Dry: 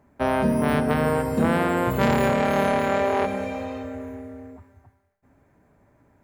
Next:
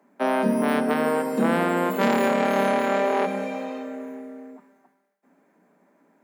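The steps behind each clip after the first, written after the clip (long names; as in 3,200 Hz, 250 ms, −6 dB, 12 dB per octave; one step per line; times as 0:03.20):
Butterworth high-pass 170 Hz 96 dB per octave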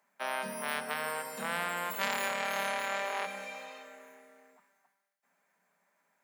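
guitar amp tone stack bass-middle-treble 10-0-10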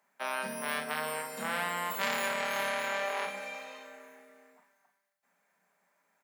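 double-tracking delay 39 ms −6 dB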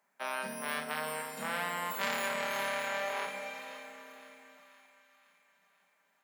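echo with a time of its own for lows and highs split 1,000 Hz, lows 309 ms, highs 517 ms, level −13.5 dB
level −2 dB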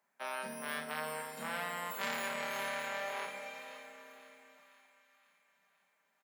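double-tracking delay 13 ms −12 dB
level −4 dB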